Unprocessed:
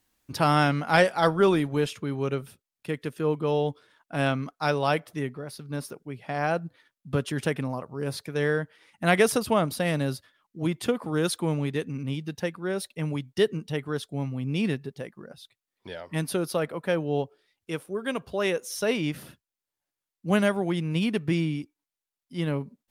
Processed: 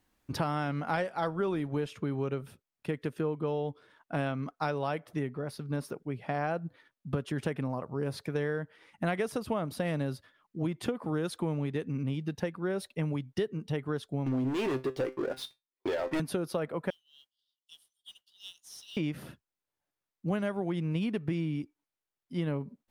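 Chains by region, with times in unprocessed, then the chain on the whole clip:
14.26–16.20 s: resonant low shelf 250 Hz -8 dB, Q 3 + waveshaping leveller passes 5 + feedback comb 130 Hz, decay 0.19 s, mix 70%
16.90–18.97 s: Chebyshev high-pass 2.9 kHz, order 8 + tilt EQ -2.5 dB/octave + modulation noise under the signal 18 dB
whole clip: treble shelf 2.8 kHz -9.5 dB; compression 6:1, threshold -31 dBFS; trim +2.5 dB

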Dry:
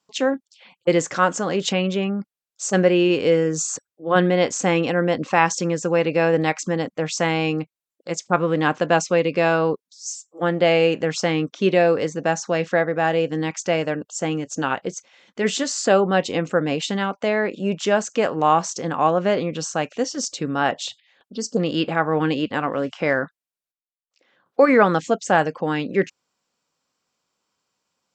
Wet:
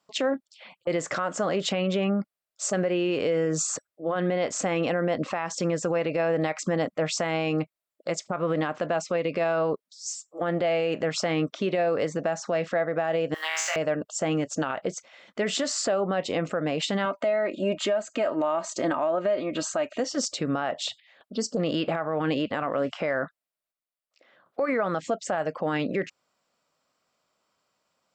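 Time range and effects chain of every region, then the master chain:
13.34–13.76 s: companding laws mixed up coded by mu + high-pass 1 kHz 24 dB/octave + flutter echo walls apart 3.2 m, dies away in 0.7 s
17.05–20.00 s: band-stop 5.5 kHz, Q 5.9 + comb 3.2 ms, depth 63%
whole clip: graphic EQ with 31 bands 630 Hz +10 dB, 1.25 kHz +5 dB, 2 kHz +3 dB, 6.3 kHz -5 dB; compression 4:1, threshold -19 dBFS; peak limiter -17.5 dBFS

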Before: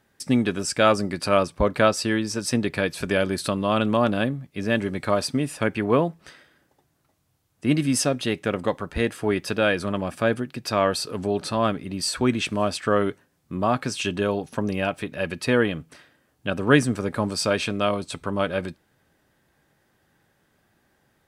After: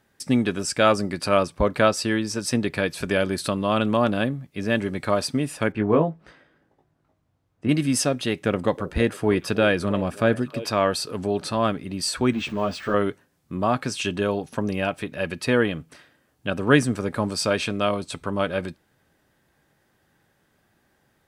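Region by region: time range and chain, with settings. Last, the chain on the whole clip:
5.72–7.69 s: low-pass 1.2 kHz 6 dB/octave + doubling 19 ms -4.5 dB
8.42–10.71 s: de-esser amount 30% + bass shelf 430 Hz +4 dB + repeats whose band climbs or falls 317 ms, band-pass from 450 Hz, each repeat 1.4 oct, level -12 dB
12.33–12.94 s: jump at every zero crossing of -34.5 dBFS + peaking EQ 11 kHz -14.5 dB 1.2 oct + three-phase chorus
whole clip: none

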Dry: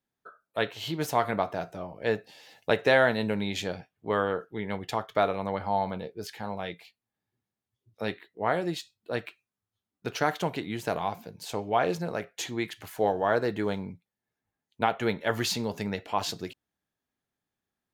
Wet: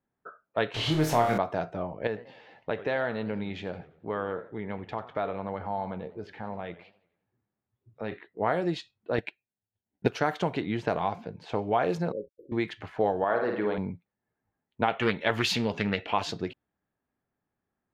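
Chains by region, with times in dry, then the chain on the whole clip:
0.74–1.38 s: jump at every zero crossing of -30.5 dBFS + flutter echo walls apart 4.4 m, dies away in 0.35 s
2.07–8.12 s: compression 1.5:1, threshold -47 dBFS + modulated delay 87 ms, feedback 46%, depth 218 cents, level -17 dB
9.18–10.08 s: transient shaper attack +11 dB, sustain -9 dB + Butterworth band-stop 1.2 kHz, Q 2.3
12.12–12.52 s: frequency weighting A + small samples zeroed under -53 dBFS + brick-wall FIR band-stop 580–11000 Hz
13.24–13.78 s: high-pass 390 Hz 6 dB/octave + distance through air 260 m + flutter echo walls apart 9 m, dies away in 0.59 s
14.88–16.23 s: peaking EQ 2.8 kHz +9.5 dB 1.2 oct + loudspeaker Doppler distortion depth 0.21 ms
whole clip: level-controlled noise filter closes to 1.9 kHz, open at -21.5 dBFS; treble shelf 3.4 kHz -8.5 dB; compression 2:1, threshold -30 dBFS; trim +5 dB

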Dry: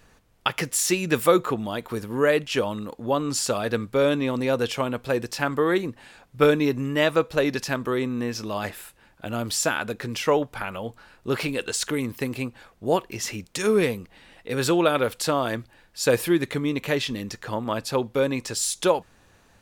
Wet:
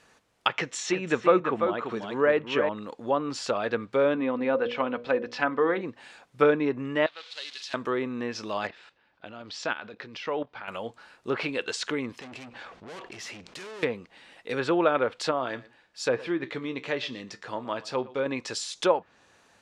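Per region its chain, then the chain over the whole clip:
0.54–2.69 s: low-pass 7.9 kHz 24 dB/octave + band-stop 4.8 kHz, Q 6.7 + delay 340 ms -6.5 dB
4.14–5.81 s: low-pass 4 kHz + hum notches 60/120/180/240/300/360/420/480/540/600 Hz + comb 4 ms, depth 45%
7.06–7.74 s: one-bit delta coder 64 kbps, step -27 dBFS + band-pass filter 3.8 kHz, Q 2.9 + loudspeaker Doppler distortion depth 0.13 ms
8.67–10.68 s: low-pass 4.7 kHz 24 dB/octave + level held to a coarse grid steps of 13 dB
12.19–13.83 s: low-pass 4.4 kHz + valve stage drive 38 dB, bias 0.5 + level flattener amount 70%
15.31–18.26 s: distance through air 53 m + feedback comb 64 Hz, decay 0.17 s + delay 116 ms -20 dB
whole clip: low-pass 9.5 kHz 12 dB/octave; low-pass that closes with the level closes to 1.9 kHz, closed at -20 dBFS; high-pass 390 Hz 6 dB/octave

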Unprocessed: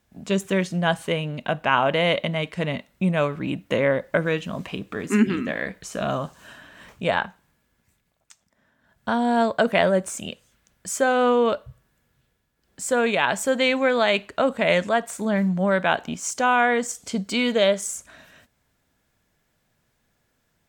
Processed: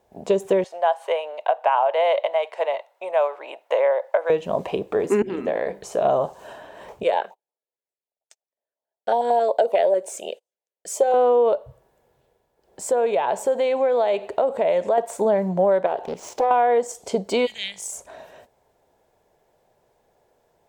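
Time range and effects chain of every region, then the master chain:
0.64–4.30 s: high-pass 650 Hz 24 dB/octave + treble shelf 3.9 kHz -7 dB
5.22–6.05 s: compression 10:1, threshold -26 dBFS + hum notches 50/100/150/200/250/300/350/400 Hz
7.03–11.14 s: high-pass 460 Hz + gate -53 dBFS, range -29 dB + step-sequenced notch 11 Hz 800–1700 Hz
12.90–14.98 s: compression 2:1, threshold -33 dBFS + feedback delay 91 ms, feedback 52%, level -22.5 dB
15.86–16.51 s: median filter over 5 samples + compression 2:1, threshold -34 dBFS + loudspeaker Doppler distortion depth 0.74 ms
17.45–17.91 s: elliptic band-stop 130–2200 Hz + mains buzz 50 Hz, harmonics 37, -64 dBFS -1 dB/octave
whole clip: high-order bell 590 Hz +15.5 dB; compression 5:1, threshold -14 dBFS; trim -2 dB

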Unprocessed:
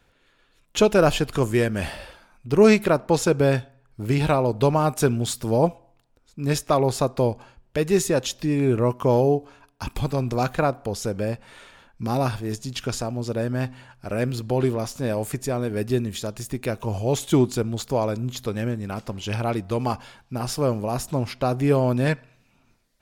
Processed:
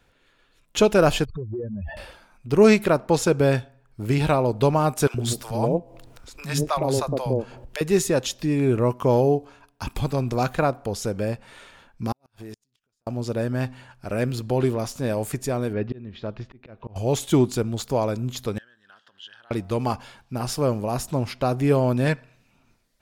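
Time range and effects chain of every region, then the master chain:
1.25–1.97 s: spectral contrast enhancement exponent 3.4 + compression 5:1, threshold -28 dBFS
5.07–7.81 s: three bands offset in time highs, lows, mids 70/110 ms, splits 210/640 Hz + upward compressor, threshold -29 dBFS
12.12–13.07 s: bass shelf 190 Hz -6.5 dB + compression 16:1, threshold -34 dBFS + inverted gate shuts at -29 dBFS, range -40 dB
15.73–16.96 s: slow attack 390 ms + Bessel low-pass 2.5 kHz, order 6
18.58–19.51 s: compression 12:1, threshold -29 dBFS + two resonant band-passes 2.3 kHz, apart 0.94 oct
whole clip: none

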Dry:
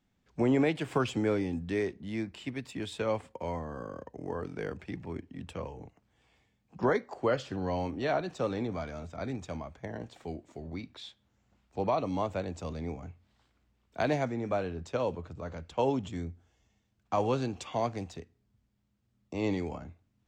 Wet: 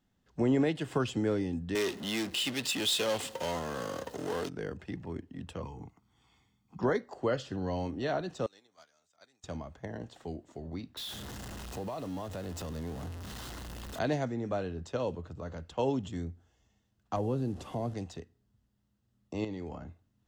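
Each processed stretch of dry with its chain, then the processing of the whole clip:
1.75–4.49 s: resonant high shelf 2.1 kHz +7.5 dB, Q 1.5 + power-law waveshaper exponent 0.5 + high-pass 430 Hz 6 dB/octave
5.62–6.81 s: bass shelf 61 Hz -9.5 dB + comb 0.9 ms, depth 74%
8.46–9.44 s: differentiator + gate -56 dBFS, range -10 dB
10.97–13.99 s: jump at every zero crossing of -36.5 dBFS + compression 2:1, threshold -38 dBFS
17.16–17.94 s: one-bit delta coder 64 kbps, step -44 dBFS + tilt shelf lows +8 dB, about 870 Hz + compression 1.5:1, threshold -37 dBFS
19.44–19.87 s: treble shelf 6.9 kHz -9.5 dB + compression 3:1, threshold -36 dBFS
whole clip: band-stop 2.3 kHz, Q 6.4; dynamic bell 960 Hz, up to -4 dB, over -43 dBFS, Q 0.72

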